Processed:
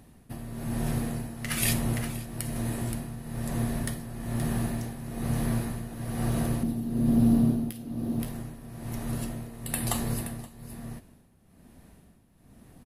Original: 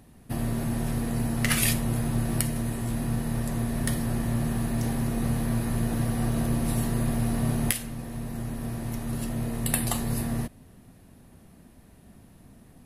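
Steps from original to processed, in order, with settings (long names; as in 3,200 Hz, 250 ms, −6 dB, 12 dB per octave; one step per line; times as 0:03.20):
0:06.63–0:08.20: octave-band graphic EQ 250/1,000/2,000/8,000 Hz +11/−4/−10/−11 dB
single-tap delay 524 ms −10.5 dB
amplitude tremolo 1.1 Hz, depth 73%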